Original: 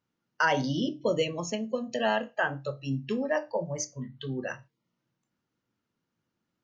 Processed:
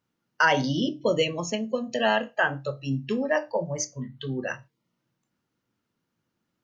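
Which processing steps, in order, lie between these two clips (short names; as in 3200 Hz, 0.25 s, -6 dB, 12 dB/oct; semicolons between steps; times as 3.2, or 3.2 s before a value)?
dynamic EQ 2600 Hz, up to +3 dB, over -38 dBFS, Q 0.71; gain +3 dB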